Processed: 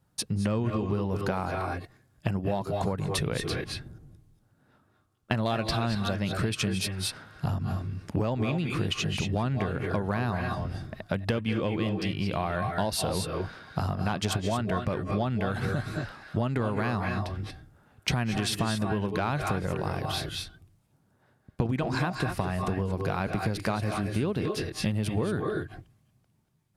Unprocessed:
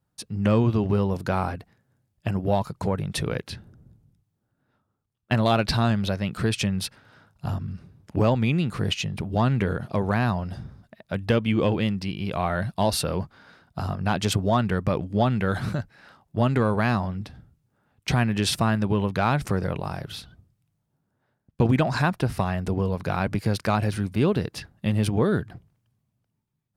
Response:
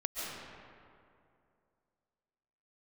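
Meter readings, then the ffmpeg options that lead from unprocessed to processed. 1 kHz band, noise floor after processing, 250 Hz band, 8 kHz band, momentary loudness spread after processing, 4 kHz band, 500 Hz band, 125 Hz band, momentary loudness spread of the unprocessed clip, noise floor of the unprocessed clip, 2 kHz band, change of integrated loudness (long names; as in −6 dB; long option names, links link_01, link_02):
−4.0 dB, −68 dBFS, −5.0 dB, −1.0 dB, 6 LU, −2.0 dB, −4.5 dB, −4.5 dB, 13 LU, −76 dBFS, −3.0 dB, −5.0 dB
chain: -filter_complex "[1:a]atrim=start_sample=2205,atrim=end_sample=6174,asetrate=25578,aresample=44100[link_01];[0:a][link_01]afir=irnorm=-1:irlink=0,acompressor=threshold=-32dB:ratio=6,volume=6dB"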